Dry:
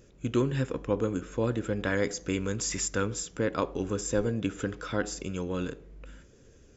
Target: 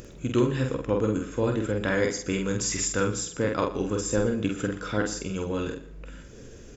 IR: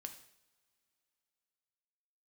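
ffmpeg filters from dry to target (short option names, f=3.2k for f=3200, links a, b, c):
-filter_complex "[0:a]acompressor=mode=upward:threshold=-39dB:ratio=2.5,asplit=2[a][b];[b]adelay=47,volume=-4dB[c];[a][c]amix=inputs=2:normalize=0,asplit=2[d][e];[1:a]atrim=start_sample=2205,adelay=119[f];[e][f]afir=irnorm=-1:irlink=0,volume=-11dB[g];[d][g]amix=inputs=2:normalize=0,volume=2dB"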